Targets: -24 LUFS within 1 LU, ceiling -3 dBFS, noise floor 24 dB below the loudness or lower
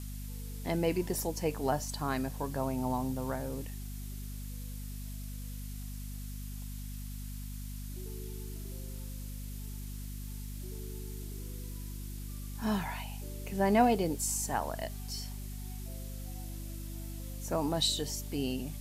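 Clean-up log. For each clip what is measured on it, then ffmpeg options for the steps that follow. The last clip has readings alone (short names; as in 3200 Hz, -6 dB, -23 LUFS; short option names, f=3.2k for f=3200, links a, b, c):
hum 50 Hz; harmonics up to 250 Hz; hum level -39 dBFS; noise floor -41 dBFS; noise floor target -60 dBFS; loudness -36.0 LUFS; peak -13.0 dBFS; loudness target -24.0 LUFS
-> -af "bandreject=f=50:t=h:w=6,bandreject=f=100:t=h:w=6,bandreject=f=150:t=h:w=6,bandreject=f=200:t=h:w=6,bandreject=f=250:t=h:w=6"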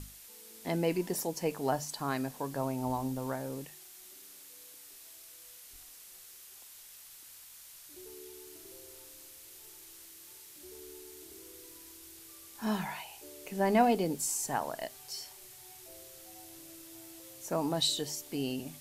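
hum none; noise floor -53 dBFS; noise floor target -58 dBFS
-> -af "afftdn=nr=6:nf=-53"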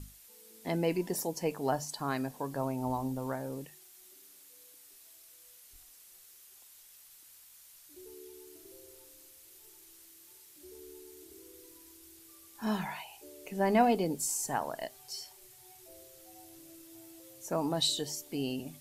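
noise floor -57 dBFS; noise floor target -58 dBFS
-> -af "afftdn=nr=6:nf=-57"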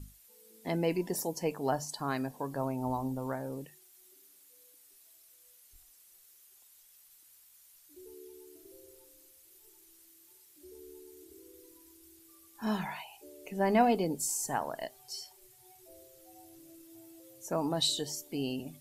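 noise floor -61 dBFS; loudness -33.5 LUFS; peak -13.0 dBFS; loudness target -24.0 LUFS
-> -af "volume=9.5dB"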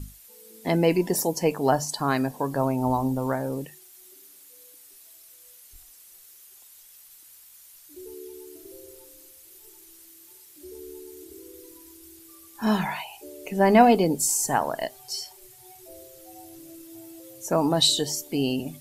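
loudness -24.0 LUFS; peak -3.5 dBFS; noise floor -51 dBFS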